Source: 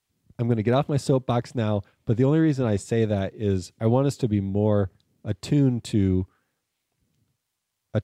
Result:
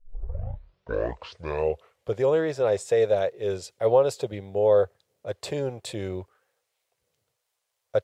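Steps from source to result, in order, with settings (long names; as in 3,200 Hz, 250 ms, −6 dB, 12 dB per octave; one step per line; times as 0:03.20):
turntable start at the beginning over 2.22 s
low shelf with overshoot 360 Hz −11.5 dB, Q 3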